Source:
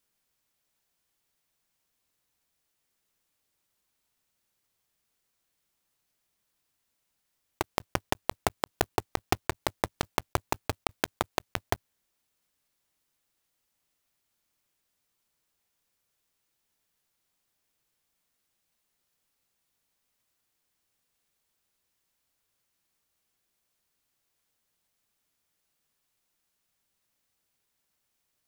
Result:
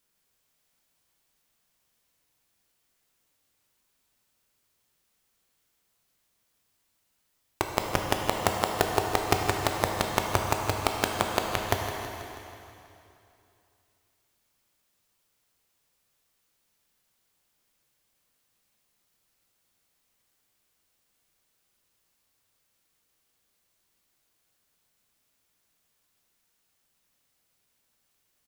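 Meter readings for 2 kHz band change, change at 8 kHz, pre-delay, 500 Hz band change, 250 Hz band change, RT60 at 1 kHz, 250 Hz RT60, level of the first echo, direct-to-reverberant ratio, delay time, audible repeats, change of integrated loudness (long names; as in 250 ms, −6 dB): +5.0 dB, +5.0 dB, 6 ms, +5.5 dB, +4.5 dB, 2.8 s, 2.7 s, −12.5 dB, 1.0 dB, 162 ms, 4, +5.0 dB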